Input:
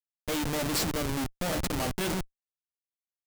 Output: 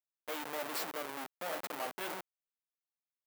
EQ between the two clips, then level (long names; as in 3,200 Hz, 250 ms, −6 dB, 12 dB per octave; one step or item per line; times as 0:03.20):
high-pass filter 610 Hz 12 dB per octave
parametric band 6,400 Hz −10.5 dB 2.3 octaves
−3.0 dB